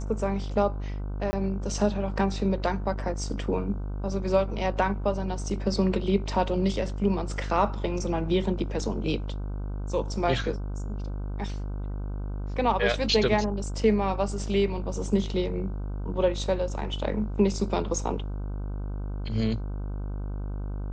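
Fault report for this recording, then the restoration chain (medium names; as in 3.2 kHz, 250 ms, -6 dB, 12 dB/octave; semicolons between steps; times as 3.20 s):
buzz 50 Hz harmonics 31 -32 dBFS
1.31–1.33 s: dropout 20 ms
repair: de-hum 50 Hz, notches 31; interpolate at 1.31 s, 20 ms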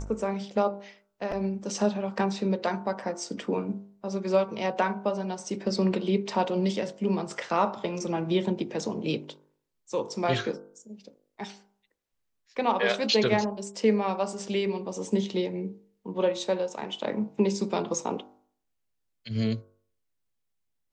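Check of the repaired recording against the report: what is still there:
nothing left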